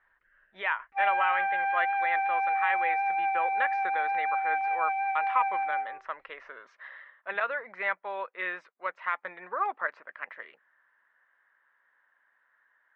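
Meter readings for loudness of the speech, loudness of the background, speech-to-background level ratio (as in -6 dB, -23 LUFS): -33.0 LUFS, -28.5 LUFS, -4.5 dB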